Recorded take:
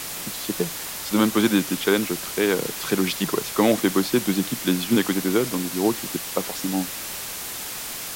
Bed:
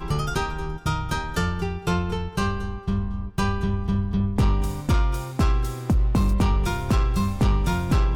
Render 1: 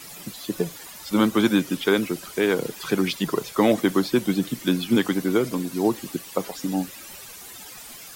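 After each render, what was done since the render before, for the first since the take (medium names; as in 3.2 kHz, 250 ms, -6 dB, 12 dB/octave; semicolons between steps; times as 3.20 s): noise reduction 13 dB, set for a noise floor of -33 dBFS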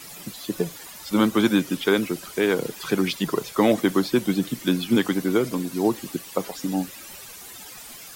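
no audible change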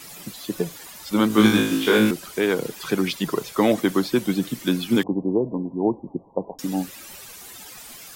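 1.28–2.11 s: flutter echo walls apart 3.2 m, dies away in 0.61 s; 5.03–6.59 s: steep low-pass 1 kHz 96 dB/octave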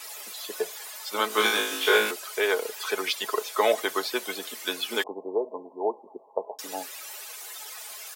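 high-pass 480 Hz 24 dB/octave; comb 4.7 ms, depth 46%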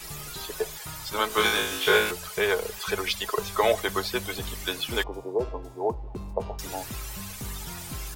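add bed -17.5 dB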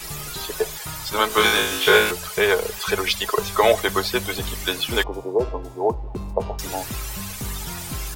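trim +6 dB; peak limiter -3 dBFS, peak gain reduction 1 dB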